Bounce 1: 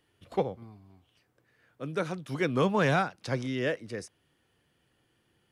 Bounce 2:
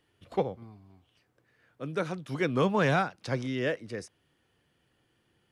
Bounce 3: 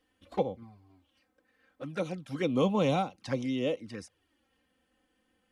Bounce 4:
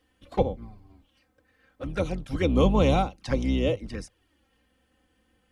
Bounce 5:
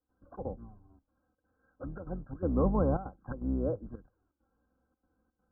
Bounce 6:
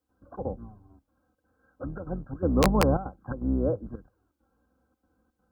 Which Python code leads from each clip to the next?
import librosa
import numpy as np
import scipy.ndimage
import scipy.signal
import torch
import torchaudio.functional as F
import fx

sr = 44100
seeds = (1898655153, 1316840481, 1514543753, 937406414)

y1 = fx.high_shelf(x, sr, hz=9600.0, db=-5.5)
y2 = y1 + 0.39 * np.pad(y1, (int(3.8 * sr / 1000.0), 0))[:len(y1)]
y2 = fx.env_flanger(y2, sr, rest_ms=4.0, full_db=-27.0)
y3 = fx.octave_divider(y2, sr, octaves=2, level_db=1.0)
y3 = y3 * librosa.db_to_amplitude(4.5)
y4 = scipy.signal.sosfilt(scipy.signal.cheby1(10, 1.0, 1600.0, 'lowpass', fs=sr, output='sos'), y3)
y4 = fx.step_gate(y4, sr, bpm=167, pattern='.xxx.xxxxxx', floor_db=-12.0, edge_ms=4.5)
y4 = y4 * librosa.db_to_amplitude(-6.0)
y5 = scipy.signal.sosfilt(scipy.signal.butter(2, 40.0, 'highpass', fs=sr, output='sos'), y4)
y5 = (np.mod(10.0 ** (17.0 / 20.0) * y5 + 1.0, 2.0) - 1.0) / 10.0 ** (17.0 / 20.0)
y5 = y5 * librosa.db_to_amplitude(5.5)